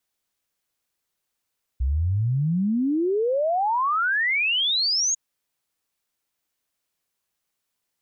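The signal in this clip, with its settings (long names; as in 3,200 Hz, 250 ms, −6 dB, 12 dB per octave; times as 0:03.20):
exponential sine sweep 61 Hz → 6,800 Hz 3.35 s −19.5 dBFS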